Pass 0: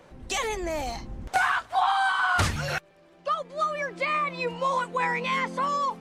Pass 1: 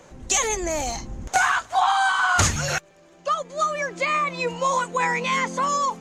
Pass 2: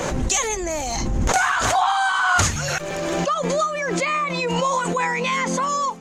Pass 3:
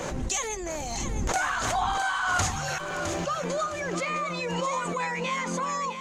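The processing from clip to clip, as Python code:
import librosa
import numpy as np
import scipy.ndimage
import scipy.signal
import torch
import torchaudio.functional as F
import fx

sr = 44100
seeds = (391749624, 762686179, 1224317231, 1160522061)

y1 = fx.peak_eq(x, sr, hz=6700.0, db=15.0, octaves=0.37)
y1 = y1 * librosa.db_to_amplitude(3.5)
y2 = fx.pre_swell(y1, sr, db_per_s=20.0)
y3 = fx.echo_feedback(y2, sr, ms=660, feedback_pct=34, wet_db=-8.5)
y3 = y3 * librosa.db_to_amplitude(-8.0)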